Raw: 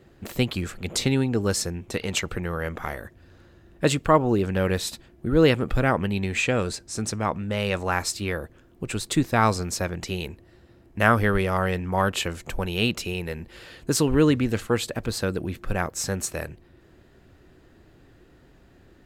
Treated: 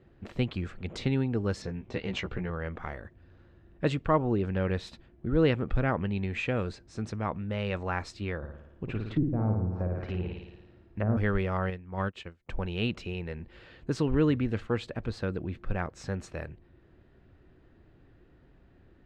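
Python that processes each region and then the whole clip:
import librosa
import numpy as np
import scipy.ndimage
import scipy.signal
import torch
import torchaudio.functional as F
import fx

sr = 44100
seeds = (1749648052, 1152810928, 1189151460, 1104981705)

y = fx.chain(x, sr, fx.lowpass(hz=7000.0, slope=24),
    fx.notch(hz=1300.0, q=15.0),
    fx.doubler(ms=16.0, db=-4.0), at=(1.62, 2.5))
y = fx.chain(y, sr, fx.room_flutter(wall_m=9.5, rt60_s=0.86),
    fx.env_lowpass_down(base_hz=400.0, full_db=-18.5), at=(8.37, 11.17))
y = fx.chain(y, sr, fx.dynamic_eq(hz=790.0, q=1.2, threshold_db=-33.0, ratio=4.0, max_db=-4),
    fx.upward_expand(threshold_db=-39.0, expansion=2.5), at=(11.7, 12.49))
y = scipy.signal.sosfilt(scipy.signal.butter(2, 3200.0, 'lowpass', fs=sr, output='sos'), y)
y = fx.low_shelf(y, sr, hz=200.0, db=5.0)
y = y * librosa.db_to_amplitude(-7.5)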